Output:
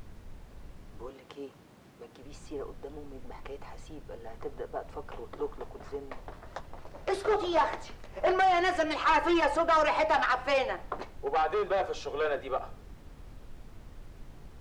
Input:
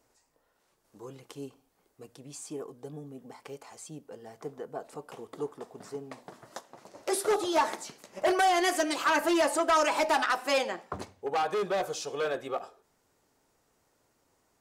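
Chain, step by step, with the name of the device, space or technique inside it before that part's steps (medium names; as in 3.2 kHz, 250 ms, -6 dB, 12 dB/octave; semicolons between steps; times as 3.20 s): aircraft cabin announcement (band-pass 360–3100 Hz; saturation -20 dBFS, distortion -18 dB; brown noise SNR 13 dB); 1.09–2.23 s: high-pass 160 Hz 12 dB/octave; 9.07–9.54 s: comb 2.3 ms, depth 62%; trim +2.5 dB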